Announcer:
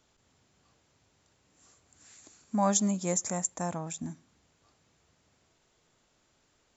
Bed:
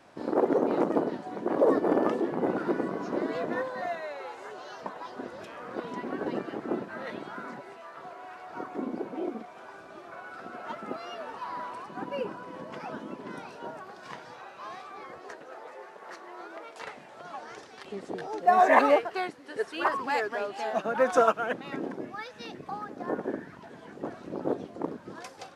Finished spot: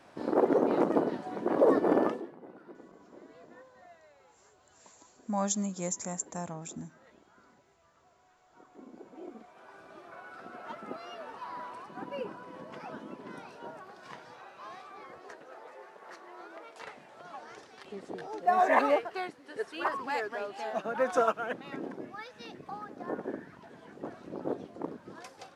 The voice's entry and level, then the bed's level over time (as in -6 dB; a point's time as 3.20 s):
2.75 s, -4.5 dB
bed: 2.03 s -0.5 dB
2.39 s -22 dB
8.44 s -22 dB
9.86 s -4.5 dB